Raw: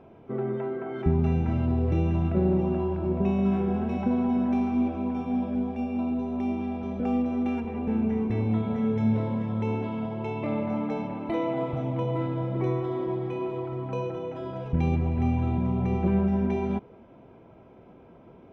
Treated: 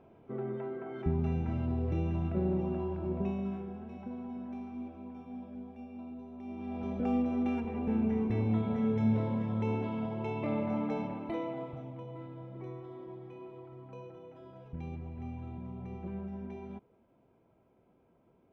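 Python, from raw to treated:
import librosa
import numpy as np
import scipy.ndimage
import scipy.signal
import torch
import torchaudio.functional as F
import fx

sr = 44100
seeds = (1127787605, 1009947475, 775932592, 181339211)

y = fx.gain(x, sr, db=fx.line((3.2, -7.5), (3.75, -16.5), (6.42, -16.5), (6.82, -4.0), (11.05, -4.0), (12.03, -16.5)))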